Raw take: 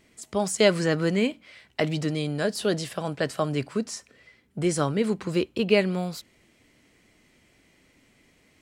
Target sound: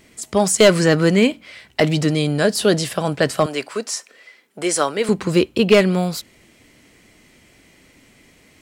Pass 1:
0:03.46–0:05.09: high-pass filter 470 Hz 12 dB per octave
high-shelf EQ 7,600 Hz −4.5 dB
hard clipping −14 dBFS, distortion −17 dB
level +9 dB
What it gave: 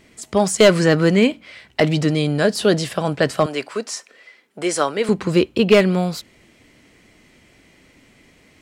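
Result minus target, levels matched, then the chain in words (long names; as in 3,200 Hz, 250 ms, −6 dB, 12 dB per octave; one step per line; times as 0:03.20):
8,000 Hz band −4.0 dB
0:03.46–0:05.09: high-pass filter 470 Hz 12 dB per octave
high-shelf EQ 7,600 Hz +4 dB
hard clipping −14 dBFS, distortion −17 dB
level +9 dB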